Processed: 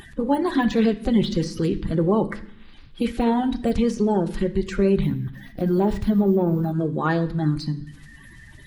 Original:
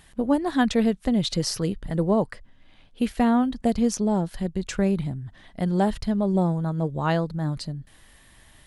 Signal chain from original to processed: coarse spectral quantiser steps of 30 dB; 5.03–6.72 s: careless resampling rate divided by 3×, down none, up hold; de-esser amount 90%; treble shelf 4.6 kHz -6.5 dB; in parallel at +0.5 dB: peak limiter -20.5 dBFS, peak gain reduction 10 dB; on the sum: peaking EQ 680 Hz -8 dB 0.64 oct; on a send at -5.5 dB: reverberation RT60 0.65 s, pre-delay 3 ms; on the sum: upward compressor, threshold -39 dBFS

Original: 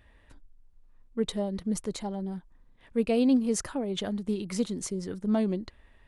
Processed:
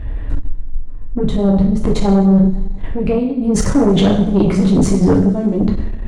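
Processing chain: tilt EQ -4.5 dB/octave; compressor with a negative ratio -26 dBFS, ratio -1; bass shelf 140 Hz -4.5 dB; two-slope reverb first 0.64 s, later 2.4 s, from -21 dB, DRR -2 dB; Chebyshev shaper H 4 -17 dB, 5 -16 dB, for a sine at -11.5 dBFS; trim +9 dB

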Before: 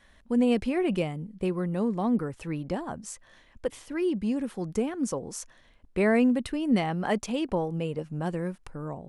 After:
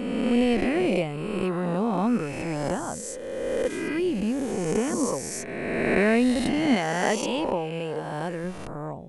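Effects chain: reverse spectral sustain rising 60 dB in 2.06 s; 6.74–8.44 s: bass shelf 190 Hz -8 dB

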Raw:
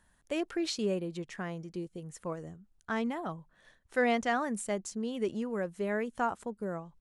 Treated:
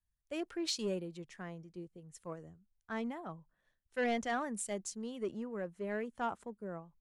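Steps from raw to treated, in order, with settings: saturation -23.5 dBFS, distortion -16 dB; three bands expanded up and down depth 70%; trim -5 dB

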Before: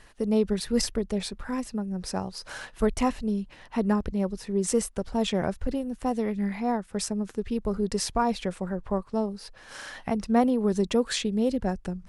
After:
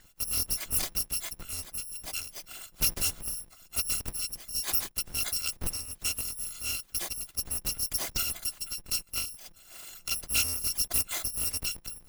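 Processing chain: bit-reversed sample order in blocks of 256 samples; harmonic-percussive split percussive +8 dB; loudspeaker Doppler distortion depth 0.35 ms; trim -8 dB

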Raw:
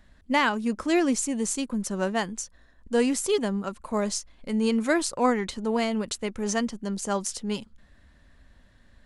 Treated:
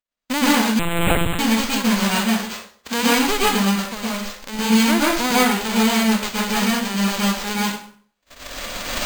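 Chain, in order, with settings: formants flattened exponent 0.1; recorder AGC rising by 19 dB/s; gate -36 dBFS, range -38 dB; 2.34–3.13 s: high-pass 74 Hz; 3.76–4.59 s: compression 2:1, threshold -31 dBFS, peak gain reduction 7 dB; plate-style reverb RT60 0.5 s, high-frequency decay 0.85×, pre-delay 105 ms, DRR -6 dB; 0.79–1.39 s: monotone LPC vocoder at 8 kHz 170 Hz; careless resampling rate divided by 4×, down filtered, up hold

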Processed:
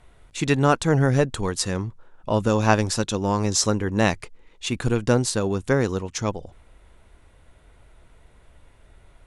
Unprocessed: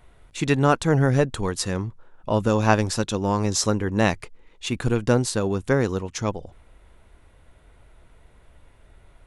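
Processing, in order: low-pass 9.7 kHz 12 dB/octave; treble shelf 6.4 kHz +6 dB

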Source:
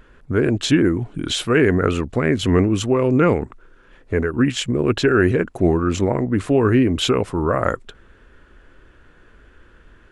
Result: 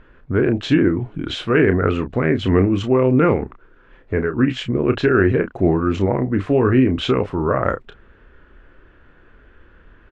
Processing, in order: low-pass 2.9 kHz 12 dB/octave; doubling 31 ms -9 dB

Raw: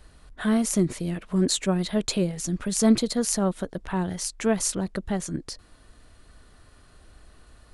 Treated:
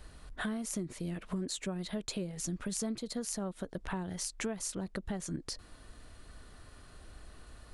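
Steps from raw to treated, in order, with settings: compression 8:1, threshold -34 dBFS, peak gain reduction 19.5 dB

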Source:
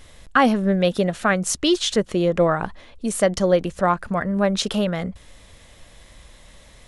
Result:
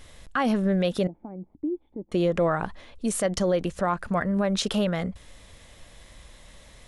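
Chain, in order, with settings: peak limiter -13 dBFS, peak gain reduction 9 dB; 1.07–2.12 s: cascade formant filter u; trim -2 dB

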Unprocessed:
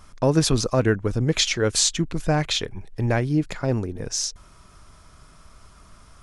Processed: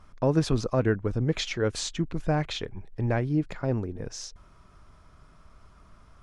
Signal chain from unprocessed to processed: low-pass 2 kHz 6 dB/octave; trim -4 dB

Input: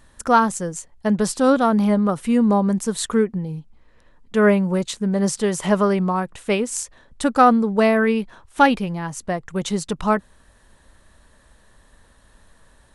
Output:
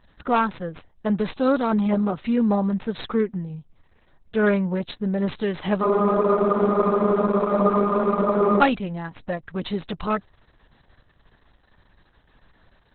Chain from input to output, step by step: tracing distortion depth 0.14 ms; spectral freeze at 5.84 s, 2.76 s; trim -3 dB; Opus 6 kbps 48 kHz

